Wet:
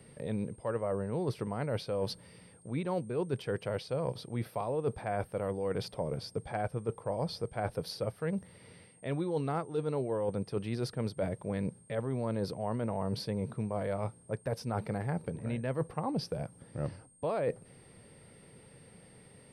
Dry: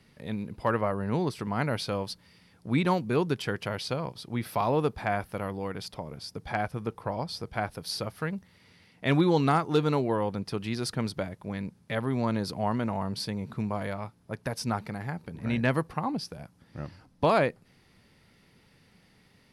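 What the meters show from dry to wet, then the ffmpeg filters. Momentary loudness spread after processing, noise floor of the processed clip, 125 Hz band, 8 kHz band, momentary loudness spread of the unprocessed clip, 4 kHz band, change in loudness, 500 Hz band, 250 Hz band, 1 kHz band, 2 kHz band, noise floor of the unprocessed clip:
7 LU, -58 dBFS, -4.0 dB, -6.0 dB, 13 LU, -8.0 dB, -5.5 dB, -3.0 dB, -6.5 dB, -8.5 dB, -11.0 dB, -62 dBFS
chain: -af "equalizer=f=125:t=o:w=1:g=7,equalizer=f=500:t=o:w=1:g=11,equalizer=f=8k:t=o:w=1:g=-8,areverse,acompressor=threshold=-30dB:ratio=10,areverse,aeval=exprs='val(0)+0.000891*sin(2*PI*8600*n/s)':c=same"

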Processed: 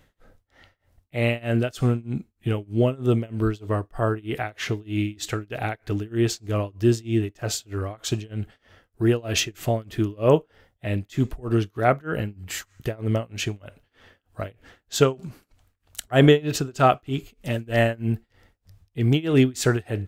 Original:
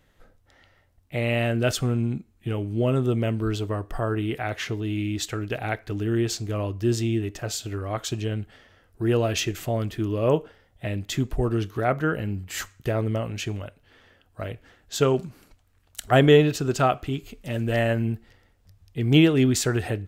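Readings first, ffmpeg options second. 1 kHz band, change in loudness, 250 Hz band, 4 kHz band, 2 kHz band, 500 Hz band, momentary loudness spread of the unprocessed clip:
+1.5 dB, +0.5 dB, +0.5 dB, 0.0 dB, 0.0 dB, +0.5 dB, 13 LU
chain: -af "tremolo=f=3.2:d=0.96,volume=4.5dB"

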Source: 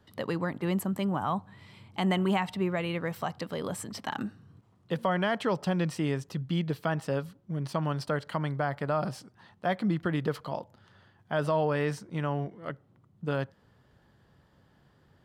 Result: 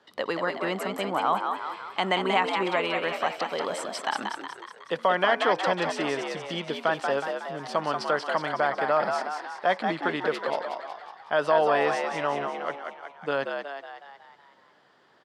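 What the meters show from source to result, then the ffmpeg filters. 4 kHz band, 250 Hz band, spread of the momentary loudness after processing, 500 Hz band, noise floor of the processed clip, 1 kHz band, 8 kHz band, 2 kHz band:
+8.0 dB, -4.0 dB, 11 LU, +5.5 dB, -59 dBFS, +8.5 dB, +2.5 dB, +8.5 dB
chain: -filter_complex "[0:a]highpass=450,lowpass=6.3k,asplit=8[a][b][c][d][e][f][g][h];[b]adelay=184,afreqshift=69,volume=-5dB[i];[c]adelay=368,afreqshift=138,volume=-10.2dB[j];[d]adelay=552,afreqshift=207,volume=-15.4dB[k];[e]adelay=736,afreqshift=276,volume=-20.6dB[l];[f]adelay=920,afreqshift=345,volume=-25.8dB[m];[g]adelay=1104,afreqshift=414,volume=-31dB[n];[h]adelay=1288,afreqshift=483,volume=-36.2dB[o];[a][i][j][k][l][m][n][o]amix=inputs=8:normalize=0,volume=6.5dB"

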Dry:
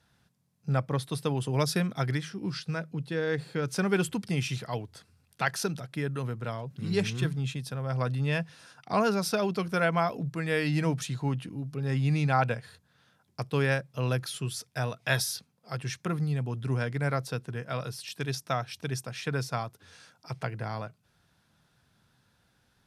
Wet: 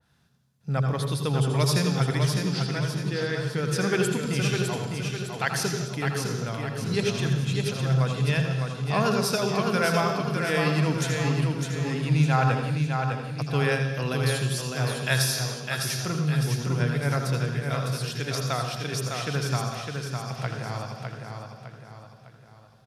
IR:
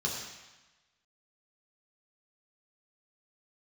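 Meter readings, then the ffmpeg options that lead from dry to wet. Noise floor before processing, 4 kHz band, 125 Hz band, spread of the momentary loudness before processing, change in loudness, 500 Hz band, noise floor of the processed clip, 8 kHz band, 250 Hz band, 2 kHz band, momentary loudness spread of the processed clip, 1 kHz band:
-70 dBFS, +7.0 dB, +6.0 dB, 10 LU, +4.5 dB, +3.5 dB, -52 dBFS, +7.0 dB, +4.0 dB, +4.0 dB, 8 LU, +3.5 dB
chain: -filter_complex "[0:a]aecho=1:1:606|1212|1818|2424|3030:0.562|0.247|0.109|0.0479|0.0211,asplit=2[a][b];[1:a]atrim=start_sample=2205,afade=t=out:st=0.35:d=0.01,atrim=end_sample=15876,adelay=80[c];[b][c]afir=irnorm=-1:irlink=0,volume=-10dB[d];[a][d]amix=inputs=2:normalize=0,adynamicequalizer=threshold=0.00891:dfrequency=2000:dqfactor=0.7:tfrequency=2000:tqfactor=0.7:attack=5:release=100:ratio=0.375:range=2:mode=boostabove:tftype=highshelf"

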